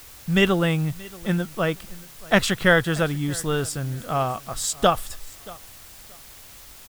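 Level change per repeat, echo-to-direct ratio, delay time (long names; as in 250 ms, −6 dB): −12.5 dB, −22.0 dB, 629 ms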